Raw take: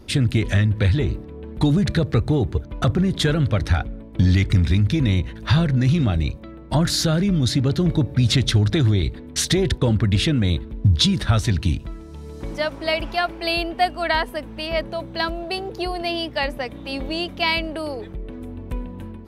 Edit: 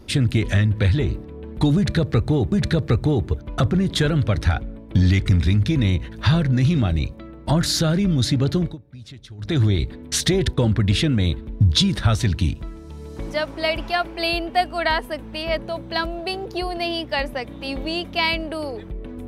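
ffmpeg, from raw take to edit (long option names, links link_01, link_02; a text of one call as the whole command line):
ffmpeg -i in.wav -filter_complex "[0:a]asplit=4[link_01][link_02][link_03][link_04];[link_01]atrim=end=2.522[link_05];[link_02]atrim=start=1.758:end=8.01,asetpts=PTS-STARTPTS,afade=type=out:start_time=6.042:duration=0.21:silence=0.0749894[link_06];[link_03]atrim=start=8.01:end=8.62,asetpts=PTS-STARTPTS,volume=-22.5dB[link_07];[link_04]atrim=start=8.62,asetpts=PTS-STARTPTS,afade=type=in:duration=0.21:silence=0.0749894[link_08];[link_06][link_07][link_08]concat=n=3:v=0:a=1[link_09];[link_05][link_09]acrossfade=duration=0.004:curve1=hsin:curve2=hsin" out.wav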